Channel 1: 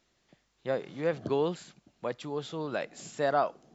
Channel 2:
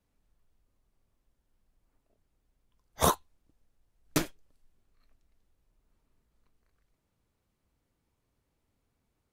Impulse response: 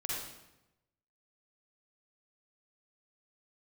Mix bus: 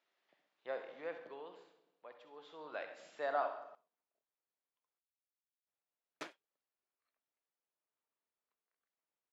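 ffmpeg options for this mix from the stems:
-filter_complex "[0:a]volume=0.5dB,afade=type=out:start_time=0.89:duration=0.46:silence=0.316228,afade=type=in:start_time=2.3:duration=0.56:silence=0.316228,asplit=3[link_01][link_02][link_03];[link_02]volume=-7.5dB[link_04];[link_03]volume=-10dB[link_05];[1:a]crystalizer=i=0.5:c=0,adelay=2050,volume=-12.5dB,asplit=3[link_06][link_07][link_08];[link_06]atrim=end=4.99,asetpts=PTS-STARTPTS,afade=type=out:start_time=4.986:duration=0.004:curve=hsin[link_09];[link_07]atrim=start=4.99:end=5.67,asetpts=PTS-STARTPTS,volume=0[link_10];[link_08]atrim=start=5.67,asetpts=PTS-STARTPTS,afade=type=in:duration=0.004:curve=hsin[link_11];[link_09][link_10][link_11]concat=n=3:v=0:a=1[link_12];[2:a]atrim=start_sample=2205[link_13];[link_04][link_13]afir=irnorm=-1:irlink=0[link_14];[link_05]aecho=0:1:66|132|198|264|330|396:1|0.46|0.212|0.0973|0.0448|0.0206[link_15];[link_01][link_12][link_14][link_15]amix=inputs=4:normalize=0,highpass=570,lowpass=3200"

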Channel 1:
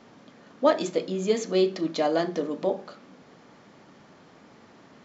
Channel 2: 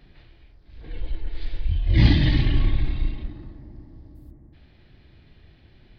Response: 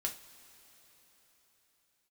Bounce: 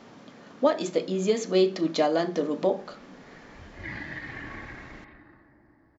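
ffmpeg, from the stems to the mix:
-filter_complex "[0:a]volume=3dB,asplit=2[link_01][link_02];[1:a]highpass=frequency=1300:poles=1,highshelf=frequency=2400:width_type=q:width=3:gain=-11,acompressor=threshold=-36dB:ratio=6,adelay=1900,volume=1.5dB[link_03];[link_02]apad=whole_len=347518[link_04];[link_03][link_04]sidechaincompress=threshold=-28dB:ratio=8:attack=16:release=1250[link_05];[link_01][link_05]amix=inputs=2:normalize=0,alimiter=limit=-12dB:level=0:latency=1:release=436"

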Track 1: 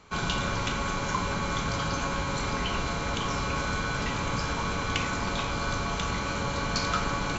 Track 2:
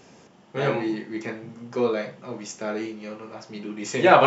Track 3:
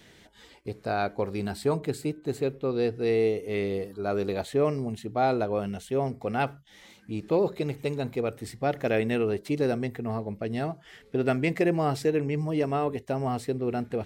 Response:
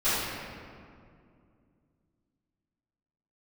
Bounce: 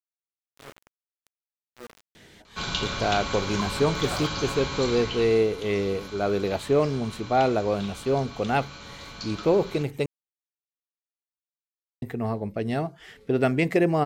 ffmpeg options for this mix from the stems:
-filter_complex "[0:a]equalizer=frequency=3900:width_type=o:width=1.2:gain=9.5,adelay=2450,volume=-3.5dB,afade=type=out:start_time=4.82:duration=0.67:silence=0.281838[link_01];[1:a]aeval=exprs='val(0)*gte(abs(val(0)),0.126)':channel_layout=same,volume=-19.5dB[link_02];[2:a]adelay=2150,volume=3dB,asplit=3[link_03][link_04][link_05];[link_03]atrim=end=10.06,asetpts=PTS-STARTPTS,afade=type=out:start_time=10.056:duration=0.004:curve=hsin[link_06];[link_04]atrim=start=10.06:end=12.02,asetpts=PTS-STARTPTS,volume=0[link_07];[link_05]atrim=start=12.02,asetpts=PTS-STARTPTS,afade=type=in:duration=0.004:curve=hsin[link_08];[link_06][link_07][link_08]concat=n=3:v=0:a=1[link_09];[link_01][link_02][link_09]amix=inputs=3:normalize=0"

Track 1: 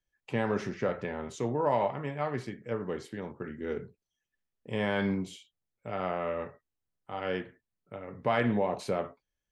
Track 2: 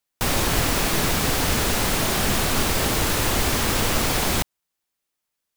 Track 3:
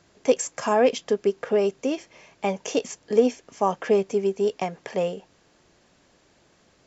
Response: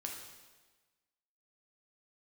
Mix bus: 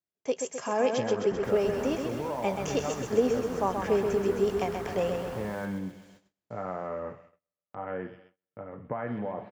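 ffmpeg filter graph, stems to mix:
-filter_complex "[0:a]bandreject=frequency=390:width=13,adelay=650,volume=0.5dB,asplit=2[link_01][link_02];[link_02]volume=-22.5dB[link_03];[1:a]adelay=1100,volume=-15.5dB,asplit=2[link_04][link_05];[link_05]volume=-16.5dB[link_06];[2:a]dynaudnorm=framelen=320:gausssize=5:maxgain=6dB,volume=-10dB,asplit=2[link_07][link_08];[link_08]volume=-5.5dB[link_09];[link_01][link_04]amix=inputs=2:normalize=0,lowpass=frequency=1700:width=0.5412,lowpass=frequency=1700:width=1.3066,acompressor=threshold=-30dB:ratio=6,volume=0dB[link_10];[link_03][link_06][link_09]amix=inputs=3:normalize=0,aecho=0:1:130|260|390|520|650|780|910|1040|1170:1|0.59|0.348|0.205|0.121|0.0715|0.0422|0.0249|0.0147[link_11];[link_07][link_10][link_11]amix=inputs=3:normalize=0,agate=range=-30dB:threshold=-55dB:ratio=16:detection=peak,highpass=55"

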